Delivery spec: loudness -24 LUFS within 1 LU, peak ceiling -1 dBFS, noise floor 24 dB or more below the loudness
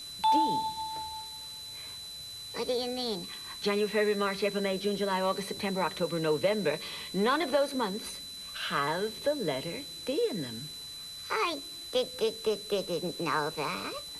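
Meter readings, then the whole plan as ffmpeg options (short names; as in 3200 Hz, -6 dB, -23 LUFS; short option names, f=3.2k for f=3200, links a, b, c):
steady tone 4000 Hz; tone level -41 dBFS; noise floor -43 dBFS; noise floor target -56 dBFS; loudness -31.5 LUFS; peak -16.0 dBFS; loudness target -24.0 LUFS
-> -af "bandreject=f=4k:w=30"
-af "afftdn=nr=13:nf=-43"
-af "volume=7.5dB"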